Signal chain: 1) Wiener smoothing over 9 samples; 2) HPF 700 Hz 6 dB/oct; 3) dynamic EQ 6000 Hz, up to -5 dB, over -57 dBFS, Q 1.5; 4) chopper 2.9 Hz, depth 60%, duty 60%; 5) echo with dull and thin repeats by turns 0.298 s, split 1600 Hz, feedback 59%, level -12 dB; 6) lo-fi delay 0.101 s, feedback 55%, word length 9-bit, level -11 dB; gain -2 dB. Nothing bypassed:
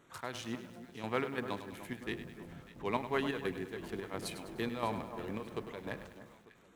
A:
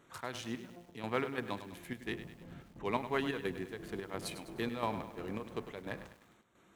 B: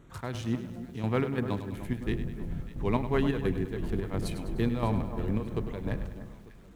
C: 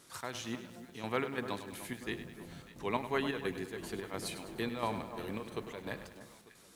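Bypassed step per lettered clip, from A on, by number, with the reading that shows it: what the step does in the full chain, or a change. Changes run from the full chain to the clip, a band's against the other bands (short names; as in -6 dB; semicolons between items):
5, momentary loudness spread change -3 LU; 2, 125 Hz band +14.0 dB; 1, 8 kHz band +4.0 dB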